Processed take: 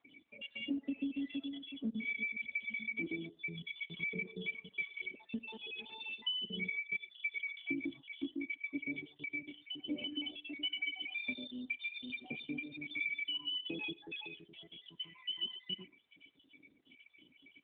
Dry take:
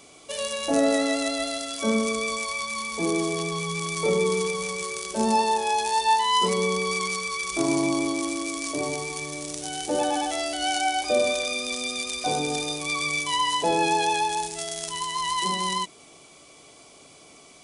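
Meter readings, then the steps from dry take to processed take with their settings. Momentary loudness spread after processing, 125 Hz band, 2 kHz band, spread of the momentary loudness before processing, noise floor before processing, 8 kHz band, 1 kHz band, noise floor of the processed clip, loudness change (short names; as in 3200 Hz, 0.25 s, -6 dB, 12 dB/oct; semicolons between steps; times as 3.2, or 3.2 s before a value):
8 LU, -17.0 dB, -9.0 dB, 8 LU, -51 dBFS, under -40 dB, -39.5 dB, -69 dBFS, -14.5 dB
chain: random spectral dropouts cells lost 58%; vocal tract filter i; resonant high shelf 1800 Hz +9.5 dB, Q 1.5; non-linear reverb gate 0.14 s flat, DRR 7 dB; compressor 8:1, threshold -32 dBFS, peak gain reduction 9.5 dB; reverb removal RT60 0.67 s; gain -1 dB; AMR-NB 12.2 kbps 8000 Hz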